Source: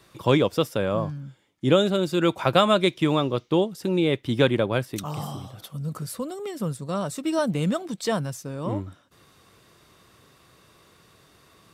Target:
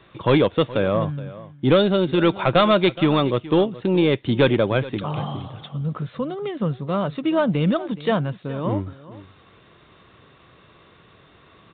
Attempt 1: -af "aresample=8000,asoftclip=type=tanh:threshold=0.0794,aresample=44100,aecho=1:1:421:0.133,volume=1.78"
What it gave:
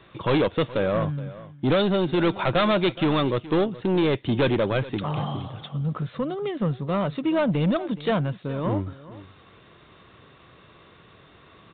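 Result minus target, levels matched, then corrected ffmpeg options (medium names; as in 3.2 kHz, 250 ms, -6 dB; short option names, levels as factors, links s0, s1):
saturation: distortion +8 dB
-af "aresample=8000,asoftclip=type=tanh:threshold=0.224,aresample=44100,aecho=1:1:421:0.133,volume=1.78"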